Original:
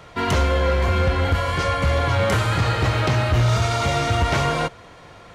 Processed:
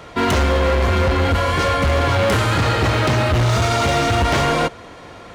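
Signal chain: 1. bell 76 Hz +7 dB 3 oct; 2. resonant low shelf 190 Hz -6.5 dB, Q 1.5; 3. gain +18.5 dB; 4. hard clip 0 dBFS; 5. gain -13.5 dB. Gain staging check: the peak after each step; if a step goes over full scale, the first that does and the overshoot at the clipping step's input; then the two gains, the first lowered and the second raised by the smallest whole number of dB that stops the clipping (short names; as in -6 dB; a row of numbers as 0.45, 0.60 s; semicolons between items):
-5.5, -10.0, +8.5, 0.0, -13.5 dBFS; step 3, 8.5 dB; step 3 +9.5 dB, step 5 -4.5 dB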